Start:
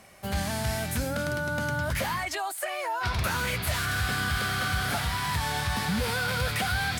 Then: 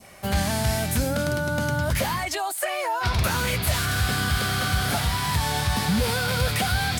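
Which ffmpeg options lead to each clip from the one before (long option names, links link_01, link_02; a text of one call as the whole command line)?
ffmpeg -i in.wav -af "adynamicequalizer=threshold=0.00891:dfrequency=1600:dqfactor=0.83:tfrequency=1600:tqfactor=0.83:attack=5:release=100:ratio=0.375:range=2.5:mode=cutabove:tftype=bell,volume=6dB" out.wav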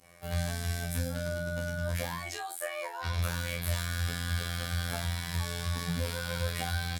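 ffmpeg -i in.wav -filter_complex "[0:a]afftfilt=real='hypot(re,im)*cos(PI*b)':imag='0':win_size=2048:overlap=0.75,asplit=2[link_01][link_02];[link_02]aecho=0:1:25|47:0.501|0.376[link_03];[link_01][link_03]amix=inputs=2:normalize=0,volume=-8.5dB" out.wav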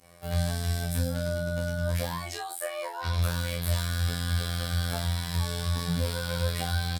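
ffmpeg -i in.wav -filter_complex "[0:a]asplit=2[link_01][link_02];[link_02]adelay=23,volume=-6.5dB[link_03];[link_01][link_03]amix=inputs=2:normalize=0,volume=1.5dB" out.wav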